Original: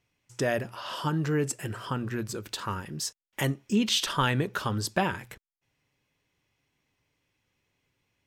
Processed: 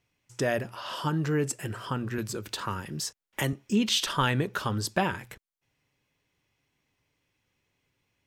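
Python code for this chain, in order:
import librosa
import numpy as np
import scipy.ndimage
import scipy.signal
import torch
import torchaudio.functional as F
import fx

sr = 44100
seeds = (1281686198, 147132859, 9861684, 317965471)

y = fx.band_squash(x, sr, depth_pct=40, at=(2.18, 3.53))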